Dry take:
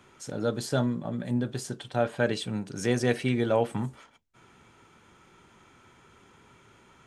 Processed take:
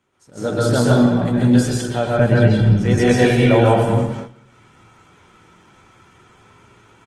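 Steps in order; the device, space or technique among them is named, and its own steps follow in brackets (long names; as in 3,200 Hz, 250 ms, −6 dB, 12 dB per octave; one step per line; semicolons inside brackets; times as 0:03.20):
0:02.17–0:02.86: bass and treble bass +12 dB, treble −13 dB
speakerphone in a meeting room (convolution reverb RT60 0.85 s, pre-delay 116 ms, DRR −4.5 dB; far-end echo of a speakerphone 210 ms, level −11 dB; automatic gain control gain up to 12 dB; noise gate −29 dBFS, range −11 dB; Opus 20 kbit/s 48,000 Hz)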